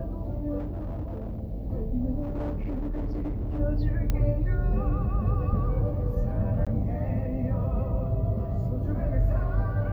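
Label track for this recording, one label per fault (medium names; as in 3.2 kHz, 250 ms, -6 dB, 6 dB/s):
0.580000	1.400000	clipped -29 dBFS
2.220000	3.600000	clipped -27 dBFS
4.100000	4.100000	pop -14 dBFS
6.650000	6.670000	dropout 16 ms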